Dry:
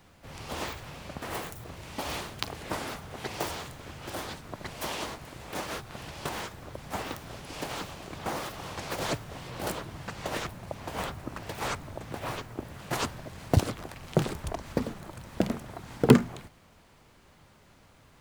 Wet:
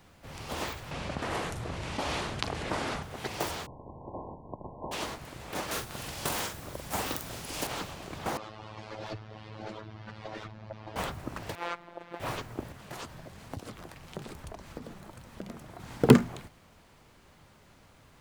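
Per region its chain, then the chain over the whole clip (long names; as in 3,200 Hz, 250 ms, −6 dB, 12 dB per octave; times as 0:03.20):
0:00.91–0:03.03: low-pass filter 11,000 Hz 24 dB per octave + high-shelf EQ 8,400 Hz −10 dB + envelope flattener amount 50%
0:03.65–0:04.91: compressing power law on the bin magnitudes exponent 0.64 + linear-phase brick-wall low-pass 1,100 Hz
0:05.71–0:07.67: high-shelf EQ 5,900 Hz +11.5 dB + double-tracking delay 44 ms −6 dB
0:08.37–0:10.96: phases set to zero 108 Hz + low-pass filter 5,100 Hz 24 dB per octave + tube saturation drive 28 dB, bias 0.2
0:11.55–0:12.20: three-way crossover with the lows and the highs turned down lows −18 dB, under 260 Hz, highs −19 dB, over 3,800 Hz + phases set to zero 172 Hz
0:12.72–0:15.80: downward compressor 3 to 1, threshold −34 dBFS + flanger 1.2 Hz, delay 3.6 ms, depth 3 ms, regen +78%
whole clip: no processing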